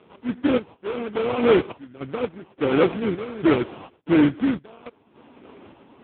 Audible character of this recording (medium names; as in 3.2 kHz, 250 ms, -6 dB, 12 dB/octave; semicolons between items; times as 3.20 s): a buzz of ramps at a fixed pitch in blocks of 16 samples; random-step tremolo, depth 95%; aliases and images of a low sample rate 1.8 kHz, jitter 20%; AMR-NB